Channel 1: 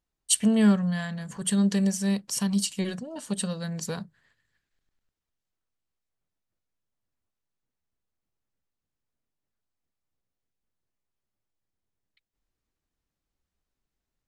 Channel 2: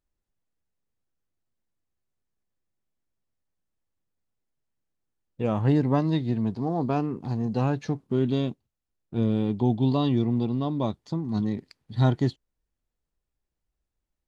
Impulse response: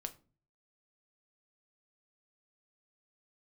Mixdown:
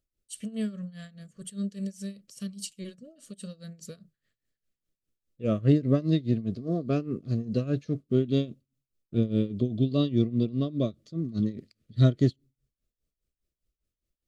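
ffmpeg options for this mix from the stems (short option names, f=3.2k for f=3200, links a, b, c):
-filter_complex "[0:a]volume=-7.5dB[a];[1:a]volume=2dB,asplit=2[b][c];[c]volume=-23.5dB[d];[2:a]atrim=start_sample=2205[e];[d][e]afir=irnorm=-1:irlink=0[f];[a][b][f]amix=inputs=3:normalize=0,equalizer=f=1.6k:t=o:w=0.83:g=-7.5,tremolo=f=4.9:d=0.85,asuperstop=centerf=870:order=8:qfactor=1.8"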